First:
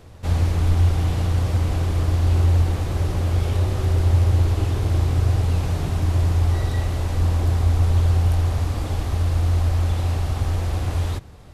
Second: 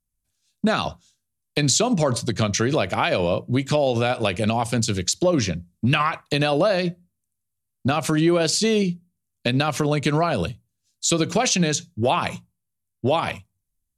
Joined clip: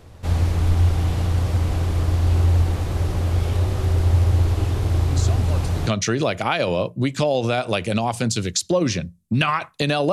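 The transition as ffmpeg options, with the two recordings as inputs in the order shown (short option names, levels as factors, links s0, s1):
-filter_complex "[1:a]asplit=2[s0][s1];[0:a]apad=whole_dur=10.12,atrim=end=10.12,atrim=end=5.872[s2];[s1]atrim=start=2.388:end=6.64[s3];[s0]atrim=start=1.63:end=2.39,asetpts=PTS-STARTPTS,volume=0.211,afade=t=in:d=0.004:c=hsin,afade=t=out:st=0.756:d=0.004:c=hsin,adelay=5110[s4];[s2][s3]acrossfade=d=0.004:c1=hsin:c2=hsin[s5];[s5][s4]amix=inputs=2:normalize=0"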